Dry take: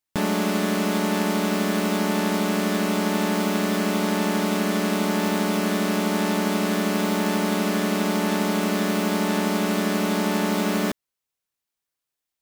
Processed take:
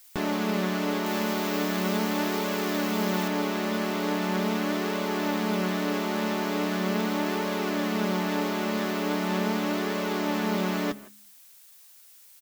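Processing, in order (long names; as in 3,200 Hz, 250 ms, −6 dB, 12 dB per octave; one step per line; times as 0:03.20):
parametric band 9,700 Hz −12.5 dB 0.7 octaves
hum removal 69.06 Hz, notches 4
far-end echo of a speakerphone 160 ms, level −18 dB
flanger 0.4 Hz, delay 1.7 ms, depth 7.2 ms, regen +44%
0:01.06–0:03.28: high-shelf EQ 6,200 Hz +7.5 dB
background noise blue −53 dBFS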